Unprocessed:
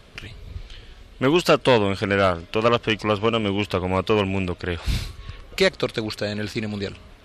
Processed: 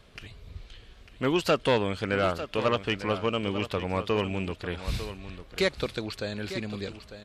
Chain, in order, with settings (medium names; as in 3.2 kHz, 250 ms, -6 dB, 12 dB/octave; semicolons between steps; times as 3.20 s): delay 899 ms -12 dB; trim -7 dB